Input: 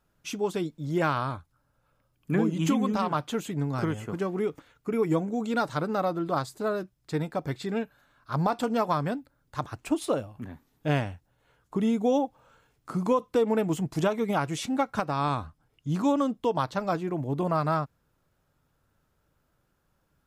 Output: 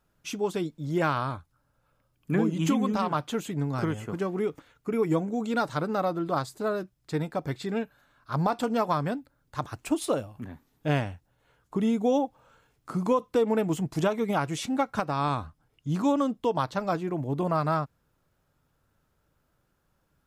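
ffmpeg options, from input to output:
ffmpeg -i in.wav -filter_complex "[0:a]asettb=1/sr,asplit=3[link_01][link_02][link_03];[link_01]atrim=end=9.654[link_04];[link_02]atrim=start=9.65:end=10.41,asetpts=PTS-STARTPTS,afade=type=in:duration=0.004:curve=qsin,afade=type=out:start_time=0.756:duration=0.004:curve=qsin,highshelf=frequency=4900:gain=4.5[link_05];[link_03]atrim=start=10.406[link_06];[link_04][link_05]acrossfade=duration=0.004:curve1=hsin:curve2=qsin[link_07];[link_07][link_06]acrossfade=duration=0.004:curve1=qsin:curve2=hsin" out.wav

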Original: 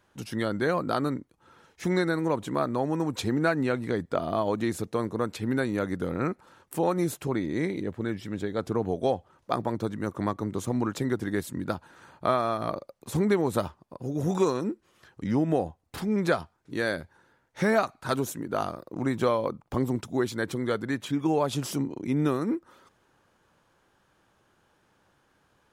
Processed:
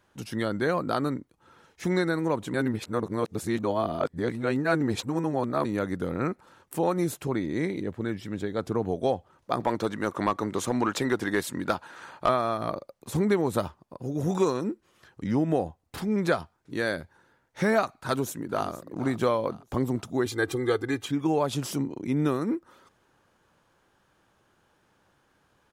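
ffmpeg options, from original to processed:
ffmpeg -i in.wav -filter_complex "[0:a]asettb=1/sr,asplit=3[link_01][link_02][link_03];[link_01]atrim=end=9.604[link_04];[link_02]atrim=start=9.6:end=12.29,asetpts=PTS-STARTPTS,afade=type=in:duration=0.004:curve=qsin,afade=type=out:start_time=2.686:duration=0.004:curve=qsin,asplit=2[link_05][link_06];[link_06]highpass=frequency=720:poles=1,volume=14dB,asoftclip=type=tanh:threshold=-11dB[link_07];[link_05][link_07]amix=inputs=2:normalize=0,lowpass=frequency=6100:poles=1,volume=-6dB[link_08];[link_03]atrim=start=12.286[link_09];[link_04][link_08]acrossfade=duration=0.004:curve1=hsin:curve2=qsin[link_10];[link_10][link_09]acrossfade=duration=0.004:curve1=qsin:curve2=hsin,asplit=2[link_11][link_12];[link_12]afade=type=in:start_time=17.93:duration=0.01,afade=type=out:start_time=18.69:duration=0.01,aecho=0:1:470|940|1410|1880:0.177828|0.0711312|0.0284525|0.011381[link_13];[link_11][link_13]amix=inputs=2:normalize=0,asettb=1/sr,asplit=3[link_14][link_15][link_16];[link_14]atrim=end=20.264[link_17];[link_15]atrim=start=20.26:end=21.06,asetpts=PTS-STARTPTS,afade=type=in:duration=0.004:curve=qsin,afade=type=out:start_time=0.796:duration=0.004:curve=qsin,aecho=1:1:2.5:0.89,atrim=end_sample=35280[link_18];[link_16]atrim=start=21.056[link_19];[link_17][link_18]acrossfade=duration=0.004:curve1=hsin:curve2=qsin[link_20];[link_20][link_19]acrossfade=duration=0.004:curve1=qsin:curve2=hsin,asplit=3[link_21][link_22][link_23];[link_21]atrim=end=2.542[link_24];[link_22]atrim=start=2.538:end=5.652,asetpts=PTS-STARTPTS,areverse[link_25];[link_23]atrim=start=5.648[link_26];[link_24][link_25]acrossfade=duration=0.004:curve1=hsin:curve2=hsin[link_27];[link_27][link_26]acrossfade=duration=0.004:curve1=hsin:curve2=hsin" out.wav

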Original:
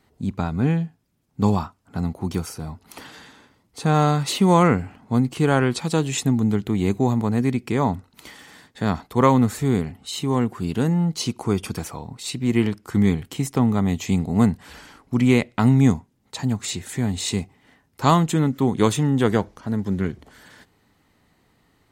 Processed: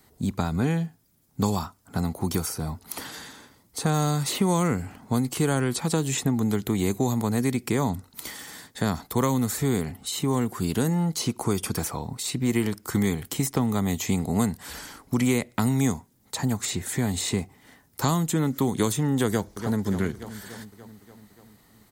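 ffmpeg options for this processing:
ffmpeg -i in.wav -filter_complex "[0:a]asplit=2[link_01][link_02];[link_02]afade=type=in:start_time=19.27:duration=0.01,afade=type=out:start_time=19.83:duration=0.01,aecho=0:1:290|580|870|1160|1450|1740|2030:0.188365|0.122437|0.0795842|0.0517297|0.0336243|0.0218558|0.0142063[link_03];[link_01][link_03]amix=inputs=2:normalize=0,equalizer=frequency=2700:width=3.3:gain=-4.5,acrossover=split=360|2700|5400[link_04][link_05][link_06][link_07];[link_04]acompressor=threshold=-26dB:ratio=4[link_08];[link_05]acompressor=threshold=-30dB:ratio=4[link_09];[link_06]acompressor=threshold=-48dB:ratio=4[link_10];[link_07]acompressor=threshold=-44dB:ratio=4[link_11];[link_08][link_09][link_10][link_11]amix=inputs=4:normalize=0,aemphasis=mode=production:type=50kf,volume=2dB" out.wav

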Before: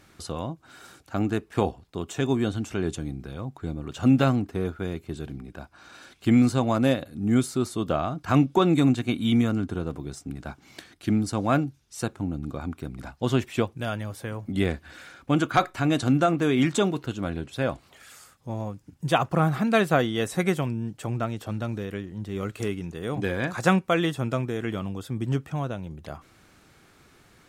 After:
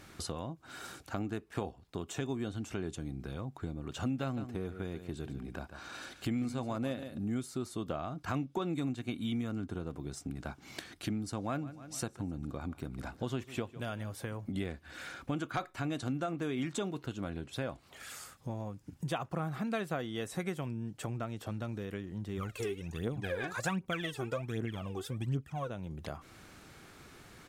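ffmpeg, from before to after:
ffmpeg -i in.wav -filter_complex "[0:a]asplit=3[link_01][link_02][link_03];[link_01]afade=type=out:start_time=4.36:duration=0.02[link_04];[link_02]aecho=1:1:143:0.224,afade=type=in:start_time=4.36:duration=0.02,afade=type=out:start_time=7.27:duration=0.02[link_05];[link_03]afade=type=in:start_time=7.27:duration=0.02[link_06];[link_04][link_05][link_06]amix=inputs=3:normalize=0,asplit=3[link_07][link_08][link_09];[link_07]afade=type=out:start_time=11.59:duration=0.02[link_10];[link_08]aecho=1:1:150|300|450:0.1|0.045|0.0202,afade=type=in:start_time=11.59:duration=0.02,afade=type=out:start_time=14.09:duration=0.02[link_11];[link_09]afade=type=in:start_time=14.09:duration=0.02[link_12];[link_10][link_11][link_12]amix=inputs=3:normalize=0,asplit=3[link_13][link_14][link_15];[link_13]afade=type=out:start_time=22.37:duration=0.02[link_16];[link_14]aphaser=in_gain=1:out_gain=1:delay=2.8:decay=0.75:speed=1.3:type=triangular,afade=type=in:start_time=22.37:duration=0.02,afade=type=out:start_time=25.69:duration=0.02[link_17];[link_15]afade=type=in:start_time=25.69:duration=0.02[link_18];[link_16][link_17][link_18]amix=inputs=3:normalize=0,acompressor=threshold=-40dB:ratio=3,volume=2dB" out.wav

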